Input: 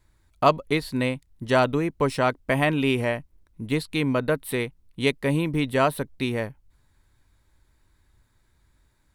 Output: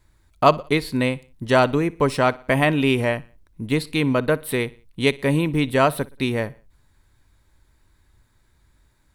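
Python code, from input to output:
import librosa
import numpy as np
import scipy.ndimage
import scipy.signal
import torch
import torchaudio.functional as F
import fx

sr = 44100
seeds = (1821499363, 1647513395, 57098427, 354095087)

y = fx.echo_feedback(x, sr, ms=60, feedback_pct=45, wet_db=-22.0)
y = F.gain(torch.from_numpy(y), 3.5).numpy()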